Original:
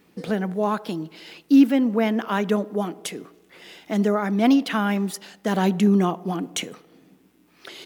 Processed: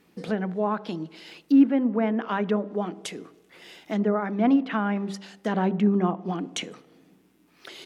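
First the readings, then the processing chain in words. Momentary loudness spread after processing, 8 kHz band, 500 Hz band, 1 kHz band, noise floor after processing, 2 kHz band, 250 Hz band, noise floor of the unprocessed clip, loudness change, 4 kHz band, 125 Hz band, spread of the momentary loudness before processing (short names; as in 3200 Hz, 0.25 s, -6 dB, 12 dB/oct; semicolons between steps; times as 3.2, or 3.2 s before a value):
15 LU, -7.0 dB, -3.0 dB, -2.5 dB, -62 dBFS, -4.0 dB, -3.0 dB, -59 dBFS, -3.0 dB, -5.5 dB, -3.5 dB, 14 LU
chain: treble ducked by the level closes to 1800 Hz, closed at -17.5 dBFS; de-hum 65.37 Hz, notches 9; gain -2.5 dB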